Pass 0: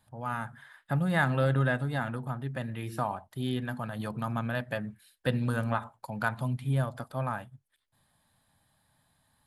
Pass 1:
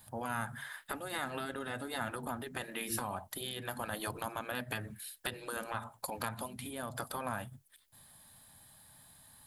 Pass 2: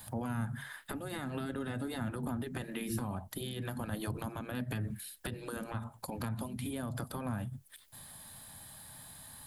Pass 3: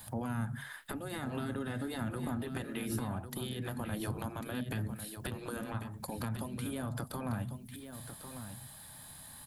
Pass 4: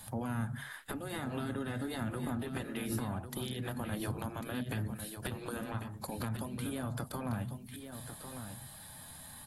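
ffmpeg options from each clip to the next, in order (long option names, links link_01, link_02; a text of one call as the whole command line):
ffmpeg -i in.wav -af "crystalizer=i=2:c=0,acompressor=threshold=-35dB:ratio=10,afftfilt=real='re*lt(hypot(re,im),0.0501)':imag='im*lt(hypot(re,im),0.0501)':win_size=1024:overlap=0.75,volume=6dB" out.wav
ffmpeg -i in.wav -filter_complex "[0:a]acrossover=split=320[link_01][link_02];[link_02]acompressor=threshold=-55dB:ratio=3[link_03];[link_01][link_03]amix=inputs=2:normalize=0,volume=8.5dB" out.wav
ffmpeg -i in.wav -af "aecho=1:1:1097:0.335" out.wav
ffmpeg -i in.wav -ar 44100 -c:a aac -b:a 48k out.aac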